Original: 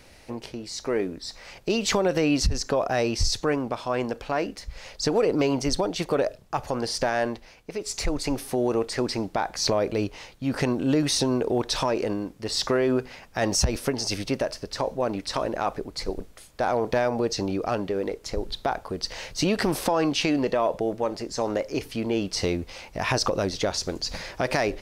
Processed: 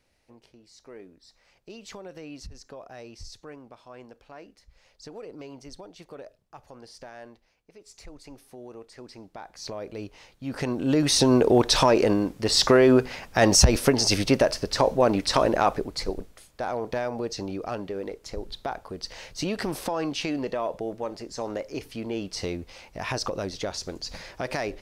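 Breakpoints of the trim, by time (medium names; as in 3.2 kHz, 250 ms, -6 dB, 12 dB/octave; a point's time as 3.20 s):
8.96 s -19 dB
10.52 s -6 dB
11.36 s +6 dB
15.56 s +6 dB
16.61 s -5.5 dB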